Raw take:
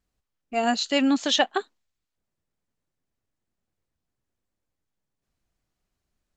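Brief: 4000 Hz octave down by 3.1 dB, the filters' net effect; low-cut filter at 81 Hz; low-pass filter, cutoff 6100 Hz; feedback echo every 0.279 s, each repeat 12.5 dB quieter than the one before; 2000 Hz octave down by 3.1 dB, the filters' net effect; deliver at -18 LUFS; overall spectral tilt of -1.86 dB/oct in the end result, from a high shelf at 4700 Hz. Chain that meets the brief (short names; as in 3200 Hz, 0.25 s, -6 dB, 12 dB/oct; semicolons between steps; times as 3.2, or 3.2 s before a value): HPF 81 Hz; LPF 6100 Hz; bell 2000 Hz -4 dB; bell 4000 Hz -5.5 dB; high shelf 4700 Hz +8 dB; feedback echo 0.279 s, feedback 24%, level -12.5 dB; gain +6.5 dB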